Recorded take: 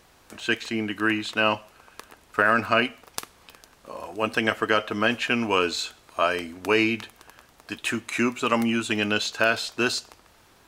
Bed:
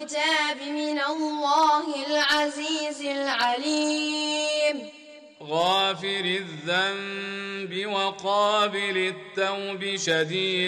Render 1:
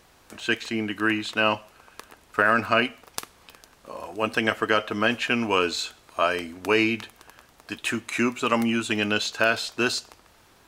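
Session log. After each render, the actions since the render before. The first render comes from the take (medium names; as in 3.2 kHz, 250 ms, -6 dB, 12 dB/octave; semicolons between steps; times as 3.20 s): no audible change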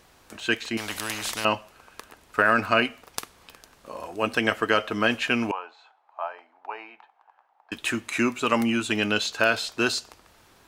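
0.77–1.45 s: spectrum-flattening compressor 4:1; 5.51–7.72 s: ladder band-pass 880 Hz, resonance 75%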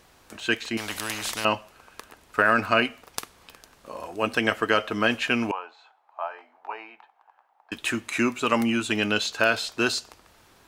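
6.29–6.73 s: doubling 20 ms -5 dB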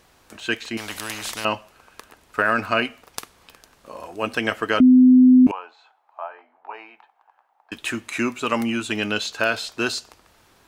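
4.80–5.47 s: bleep 254 Hz -8 dBFS; 6.20–6.74 s: distance through air 290 m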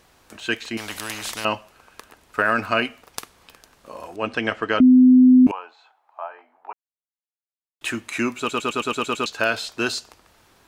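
4.16–4.84 s: distance through air 100 m; 6.73–7.81 s: mute; 8.38 s: stutter in place 0.11 s, 8 plays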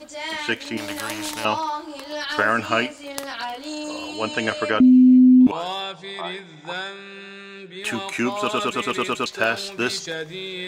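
add bed -6.5 dB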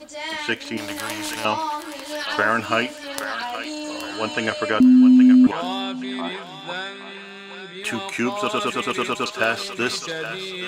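thinning echo 821 ms, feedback 41%, high-pass 760 Hz, level -9 dB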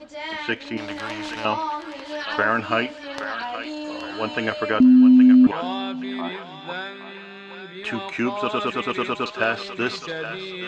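distance through air 160 m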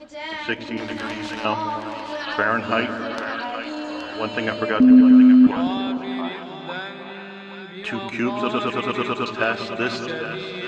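delay with an opening low-pass 101 ms, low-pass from 200 Hz, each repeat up 1 oct, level -3 dB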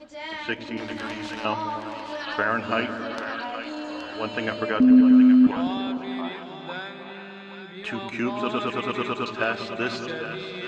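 trim -3.5 dB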